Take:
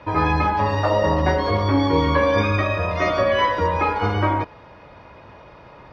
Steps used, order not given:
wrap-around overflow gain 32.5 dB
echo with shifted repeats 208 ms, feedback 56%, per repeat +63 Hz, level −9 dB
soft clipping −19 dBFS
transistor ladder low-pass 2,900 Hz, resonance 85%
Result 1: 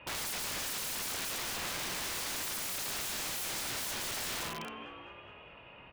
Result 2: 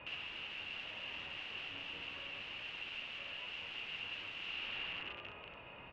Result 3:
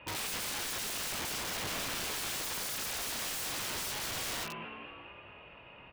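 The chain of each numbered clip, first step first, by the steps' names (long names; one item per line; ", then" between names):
transistor ladder low-pass, then soft clipping, then echo with shifted repeats, then wrap-around overflow
echo with shifted repeats, then soft clipping, then wrap-around overflow, then transistor ladder low-pass
soft clipping, then echo with shifted repeats, then transistor ladder low-pass, then wrap-around overflow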